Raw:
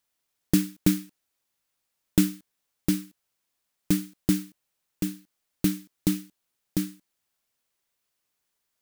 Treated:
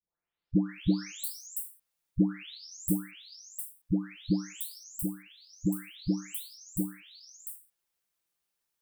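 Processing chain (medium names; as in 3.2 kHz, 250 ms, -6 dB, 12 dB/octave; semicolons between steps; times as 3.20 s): delay that grows with frequency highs late, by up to 705 ms; trim -3 dB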